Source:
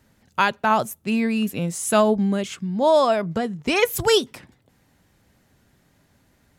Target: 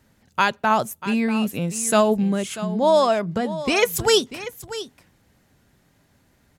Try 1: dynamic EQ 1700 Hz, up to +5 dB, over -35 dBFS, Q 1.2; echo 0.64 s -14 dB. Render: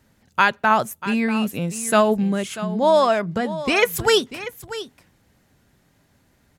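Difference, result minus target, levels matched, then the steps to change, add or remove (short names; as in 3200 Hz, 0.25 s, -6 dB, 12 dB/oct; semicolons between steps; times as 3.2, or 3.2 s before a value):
8000 Hz band -3.5 dB
change: dynamic EQ 6500 Hz, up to +5 dB, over -35 dBFS, Q 1.2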